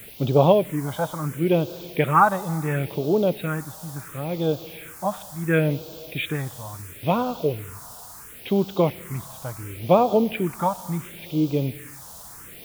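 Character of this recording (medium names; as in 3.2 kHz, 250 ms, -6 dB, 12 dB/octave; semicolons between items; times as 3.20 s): a quantiser's noise floor 8-bit, dither triangular; phasing stages 4, 0.72 Hz, lowest notch 370–1900 Hz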